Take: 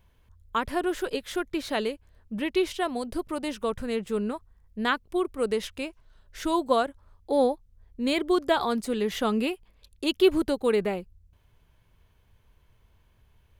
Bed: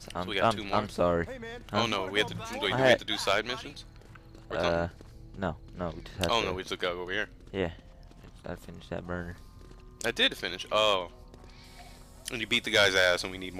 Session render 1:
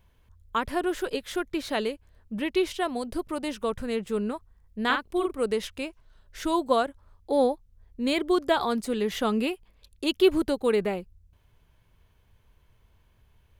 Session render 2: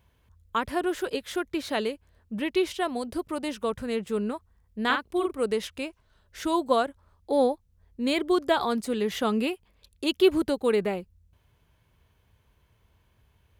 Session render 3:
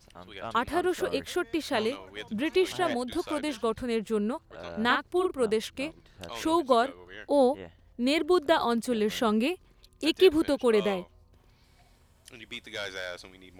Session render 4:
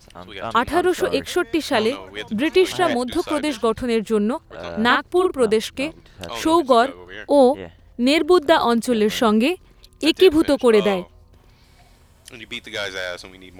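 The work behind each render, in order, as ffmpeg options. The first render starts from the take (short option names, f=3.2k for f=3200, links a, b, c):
-filter_complex "[0:a]asettb=1/sr,asplit=3[a][b][c];[a]atrim=end=4.854[d];[b]atrim=start=4.85:end=5.33,asetpts=PTS-STARTPTS,afade=t=in:d=0.004:c=qsin,afade=t=out:st=0.476:d=0.004:c=qsin,asplit=2[e][f];[f]adelay=48,volume=-5dB[g];[e][g]amix=inputs=2:normalize=0,atrim=end_sample=21168[h];[c]atrim=start=5.326[i];[d][h]acrossfade=d=0.004:c1=hsin:c2=qsin[j];[j][i]acrossfade=d=0.004:c1=qsin:c2=hsin"
-af "highpass=52"
-filter_complex "[1:a]volume=-13dB[a];[0:a][a]amix=inputs=2:normalize=0"
-af "volume=9dB,alimiter=limit=-3dB:level=0:latency=1"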